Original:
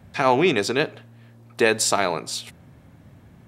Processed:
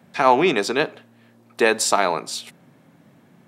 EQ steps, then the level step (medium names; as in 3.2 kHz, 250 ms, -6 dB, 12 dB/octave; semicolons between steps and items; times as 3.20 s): high-pass 160 Hz 24 dB/octave; dynamic bell 970 Hz, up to +5 dB, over -33 dBFS, Q 1.2; 0.0 dB